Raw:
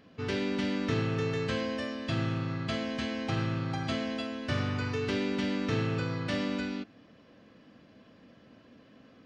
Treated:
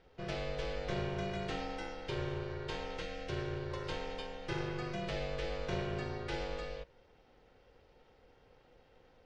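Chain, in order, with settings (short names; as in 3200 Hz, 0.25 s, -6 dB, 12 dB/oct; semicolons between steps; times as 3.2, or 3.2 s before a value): 3.02–3.71 elliptic band-stop 550–1200 Hz; ring modulator 250 Hz; gain -4 dB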